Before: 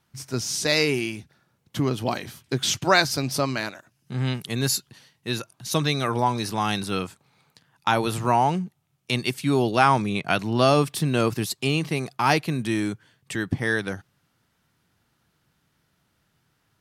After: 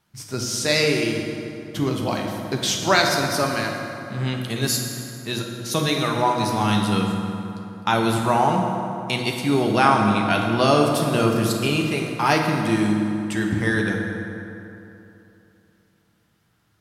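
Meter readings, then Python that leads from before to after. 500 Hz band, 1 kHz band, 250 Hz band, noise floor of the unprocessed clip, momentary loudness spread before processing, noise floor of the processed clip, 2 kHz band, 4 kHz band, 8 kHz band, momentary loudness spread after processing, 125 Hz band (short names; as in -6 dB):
+3.0 dB, +2.5 dB, +4.5 dB, -71 dBFS, 12 LU, -64 dBFS, +2.5 dB, +2.0 dB, +2.0 dB, 12 LU, +2.0 dB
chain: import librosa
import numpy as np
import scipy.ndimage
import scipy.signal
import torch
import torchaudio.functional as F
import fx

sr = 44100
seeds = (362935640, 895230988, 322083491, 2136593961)

y = fx.rev_fdn(x, sr, rt60_s=3.0, lf_ratio=1.0, hf_ratio=0.55, size_ms=29.0, drr_db=0.5)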